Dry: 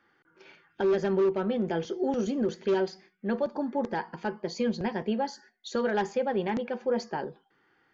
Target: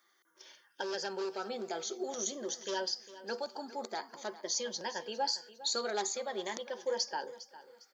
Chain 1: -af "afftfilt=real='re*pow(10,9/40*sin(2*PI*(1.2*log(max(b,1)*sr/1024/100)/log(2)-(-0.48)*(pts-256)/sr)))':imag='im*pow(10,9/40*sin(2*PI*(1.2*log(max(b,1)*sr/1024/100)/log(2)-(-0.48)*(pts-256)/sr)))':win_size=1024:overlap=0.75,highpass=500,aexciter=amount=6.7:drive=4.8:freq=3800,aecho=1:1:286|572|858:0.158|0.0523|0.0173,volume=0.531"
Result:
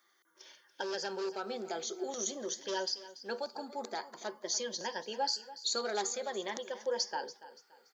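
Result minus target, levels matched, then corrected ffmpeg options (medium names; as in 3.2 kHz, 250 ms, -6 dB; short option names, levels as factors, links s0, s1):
echo 119 ms early
-af "afftfilt=real='re*pow(10,9/40*sin(2*PI*(1.2*log(max(b,1)*sr/1024/100)/log(2)-(-0.48)*(pts-256)/sr)))':imag='im*pow(10,9/40*sin(2*PI*(1.2*log(max(b,1)*sr/1024/100)/log(2)-(-0.48)*(pts-256)/sr)))':win_size=1024:overlap=0.75,highpass=500,aexciter=amount=6.7:drive=4.8:freq=3800,aecho=1:1:405|810|1215:0.158|0.0523|0.0173,volume=0.531"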